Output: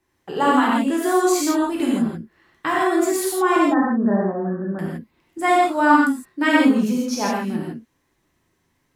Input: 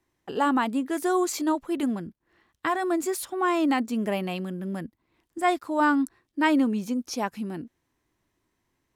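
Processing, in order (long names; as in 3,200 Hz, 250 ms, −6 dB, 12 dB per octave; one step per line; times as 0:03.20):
0:03.56–0:04.79: Chebyshev low-pass filter 1,800 Hz, order 8
reverb whose tail is shaped and stops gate 190 ms flat, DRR −5 dB
level +1.5 dB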